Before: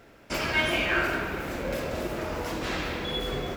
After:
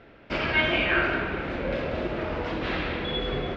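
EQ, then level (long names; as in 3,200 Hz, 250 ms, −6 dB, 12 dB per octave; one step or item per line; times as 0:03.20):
low-pass filter 3,700 Hz 24 dB per octave
parametric band 980 Hz −2 dB
+2.5 dB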